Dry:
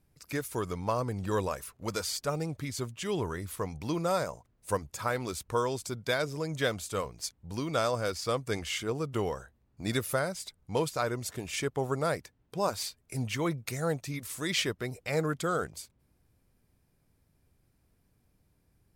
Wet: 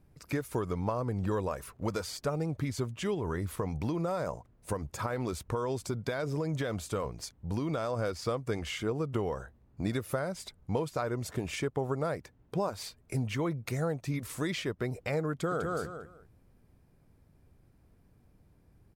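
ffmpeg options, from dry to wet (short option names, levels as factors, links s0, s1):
-filter_complex "[0:a]asettb=1/sr,asplit=3[s0][s1][s2];[s0]atrim=end=3.144[s3];[s1]atrim=start=3.14:end=7.99,asetpts=PTS-STARTPTS,afade=t=in:d=0.004:c=qsin,afade=t=out:st=4.846:d=0.004:c=qsin,acompressor=threshold=0.0316:ratio=6:attack=3.2:release=140:knee=1:detection=peak[s4];[s2]atrim=start=7.986[s5];[s3][s4]acrossfade=d=0.004:c1=hsin:c2=qsin[s6];[s6][s5]acrossfade=d=0.004:c1=qsin:c2=hsin,asplit=2[s7][s8];[s8]afade=t=in:st=15.31:d=0.01,afade=t=out:st=15.71:d=0.01,aecho=0:1:200|400|600:0.562341|0.112468|0.0224937[s9];[s7][s9]amix=inputs=2:normalize=0,acompressor=threshold=0.0178:ratio=6,highshelf=f=2200:g=-11,volume=2.37"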